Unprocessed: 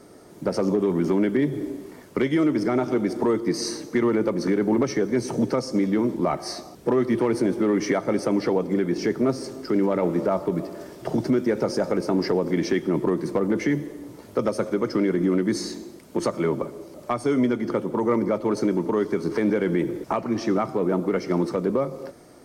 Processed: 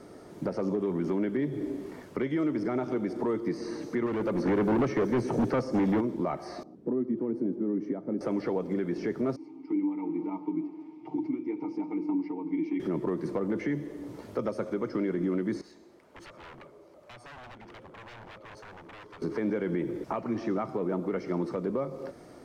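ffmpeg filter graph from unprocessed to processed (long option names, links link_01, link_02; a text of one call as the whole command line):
ffmpeg -i in.wav -filter_complex "[0:a]asettb=1/sr,asplit=3[link_01][link_02][link_03];[link_01]atrim=end=4.064[link_04];[link_02]atrim=start=4.06:end=6.01,asetpts=PTS-STARTPTS,afade=type=in:duration=0.004:curve=qsin,afade=type=out:start_time=1.946:duration=0.004:curve=qsin,highshelf=frequency=7800:gain=6,asoftclip=type=hard:threshold=-22dB[link_05];[link_03]atrim=start=6.006[link_06];[link_04][link_05]acrossfade=duration=0.004:curve1=hsin:curve2=qsin[link_07];[link_07][link_06]acrossfade=duration=0.004:curve1=qsin:curve2=hsin,asettb=1/sr,asplit=3[link_08][link_09][link_10];[link_08]atrim=end=6.634[link_11];[link_09]atrim=start=6.63:end=8.21,asetpts=PTS-STARTPTS,afade=type=in:duration=0.004:curve=qsin,afade=type=out:start_time=1.576:duration=0.004:curve=qsin,bandpass=frequency=250:width_type=q:width=1.8,aemphasis=mode=production:type=50fm[link_12];[link_10]atrim=start=8.206[link_13];[link_11][link_12]acrossfade=duration=0.004:curve1=hsin:curve2=qsin[link_14];[link_14][link_13]acrossfade=duration=0.004:curve1=qsin:curve2=hsin,asettb=1/sr,asplit=3[link_15][link_16][link_17];[link_15]atrim=end=9.364[link_18];[link_16]atrim=start=9.36:end=12.8,asetpts=PTS-STARTPTS,afade=type=in:duration=0.004:curve=qsin,afade=type=out:start_time=3.436:duration=0.004:curve=qsin,asplit=3[link_19][link_20][link_21];[link_19]bandpass=frequency=300:width_type=q:width=8,volume=0dB[link_22];[link_20]bandpass=frequency=870:width_type=q:width=8,volume=-6dB[link_23];[link_21]bandpass=frequency=2240:width_type=q:width=8,volume=-9dB[link_24];[link_22][link_23][link_24]amix=inputs=3:normalize=0,bandreject=frequency=60:width_type=h:width=6,bandreject=frequency=120:width_type=h:width=6,bandreject=frequency=180:width_type=h:width=6,bandreject=frequency=240:width_type=h:width=6,bandreject=frequency=300:width_type=h:width=6,bandreject=frequency=360:width_type=h:width=6,bandreject=frequency=420:width_type=h:width=6,bandreject=frequency=480:width_type=h:width=6,bandreject=frequency=540:width_type=h:width=6,bandreject=frequency=600:width_type=h:width=6,aecho=1:1:6.5:0.71,atrim=end_sample=151704[link_25];[link_17]atrim=start=12.796[link_26];[link_18][link_25]acrossfade=duration=0.004:curve1=hsin:curve2=qsin[link_27];[link_27][link_26]acrossfade=duration=0.004:curve1=qsin:curve2=hsin,asettb=1/sr,asplit=3[link_28][link_29][link_30];[link_28]atrim=end=15.614[link_31];[link_29]atrim=start=15.61:end=19.22,asetpts=PTS-STARTPTS,afade=type=in:duration=0.004:curve=qsin,afade=type=out:start_time=3.606:duration=0.004:curve=qsin,aeval=exprs='0.0531*(abs(mod(val(0)/0.0531+3,4)-2)-1)':channel_layout=same,acrossover=split=420 2300:gain=0.178 1 0.2[link_32][link_33][link_34];[link_32][link_33][link_34]amix=inputs=3:normalize=0,acrossover=split=150|3000[link_35][link_36][link_37];[link_36]acompressor=threshold=-59dB:ratio=2:attack=3.2:release=140:knee=2.83:detection=peak[link_38];[link_35][link_38][link_37]amix=inputs=3:normalize=0[link_39];[link_30]atrim=start=19.216[link_40];[link_31][link_39]acrossfade=duration=0.004:curve1=hsin:curve2=qsin[link_41];[link_41][link_40]acrossfade=duration=0.004:curve1=qsin:curve2=hsin,alimiter=limit=-21.5dB:level=0:latency=1:release=418,highshelf=frequency=6300:gain=-10.5,acrossover=split=2600[link_42][link_43];[link_43]acompressor=threshold=-52dB:ratio=4:attack=1:release=60[link_44];[link_42][link_44]amix=inputs=2:normalize=0" out.wav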